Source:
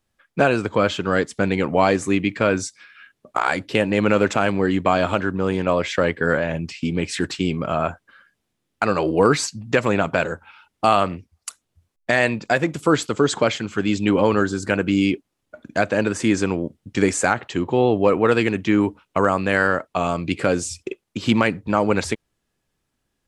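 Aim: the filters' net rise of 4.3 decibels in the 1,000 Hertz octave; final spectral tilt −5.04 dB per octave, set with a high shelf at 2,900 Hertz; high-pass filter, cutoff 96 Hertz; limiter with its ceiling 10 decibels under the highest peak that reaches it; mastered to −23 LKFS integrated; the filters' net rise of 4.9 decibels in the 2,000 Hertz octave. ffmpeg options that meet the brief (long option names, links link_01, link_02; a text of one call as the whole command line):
ffmpeg -i in.wav -af "highpass=96,equalizer=frequency=1000:width_type=o:gain=4.5,equalizer=frequency=2000:width_type=o:gain=6,highshelf=frequency=2900:gain=-3.5,volume=-0.5dB,alimiter=limit=-10dB:level=0:latency=1" out.wav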